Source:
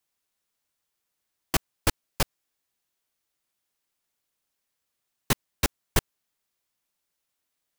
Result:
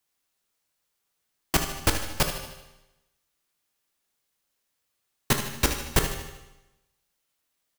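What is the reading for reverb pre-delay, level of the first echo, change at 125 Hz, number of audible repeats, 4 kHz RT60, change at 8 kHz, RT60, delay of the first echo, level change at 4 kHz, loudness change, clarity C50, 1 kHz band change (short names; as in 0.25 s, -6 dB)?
13 ms, -10.5 dB, +2.5 dB, 2, 0.95 s, +3.0 dB, 1.0 s, 76 ms, +3.0 dB, +2.5 dB, 5.5 dB, +3.0 dB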